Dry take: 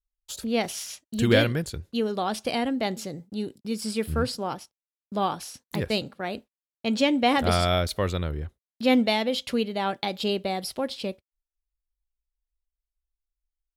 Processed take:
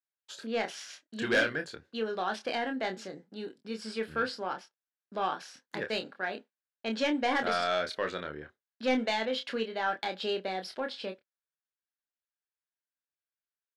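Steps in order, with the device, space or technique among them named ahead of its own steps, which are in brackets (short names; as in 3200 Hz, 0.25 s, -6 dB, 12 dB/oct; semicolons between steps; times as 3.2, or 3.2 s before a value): intercom (BPF 300–4800 Hz; bell 1600 Hz +11 dB 0.4 oct; soft clip -15 dBFS, distortion -14 dB; doubler 27 ms -6.5 dB); gain -5 dB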